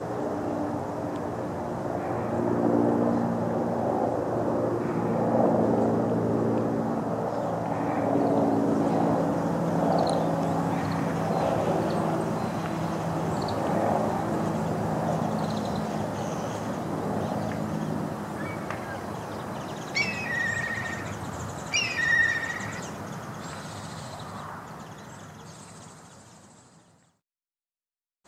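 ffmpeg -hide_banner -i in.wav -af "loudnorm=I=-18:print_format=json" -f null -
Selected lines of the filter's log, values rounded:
"input_i" : "-27.6",
"input_tp" : "-9.2",
"input_lra" : "5.9",
"input_thresh" : "-38.4",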